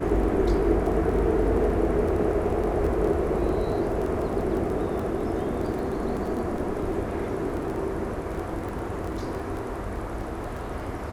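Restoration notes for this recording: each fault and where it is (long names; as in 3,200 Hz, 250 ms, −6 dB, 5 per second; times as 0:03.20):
surface crackle 10 per second −30 dBFS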